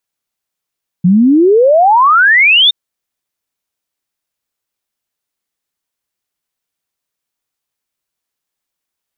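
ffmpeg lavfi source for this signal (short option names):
-f lavfi -i "aevalsrc='0.596*clip(min(t,1.67-t)/0.01,0,1)*sin(2*PI*170*1.67/log(3700/170)*(exp(log(3700/170)*t/1.67)-1))':d=1.67:s=44100"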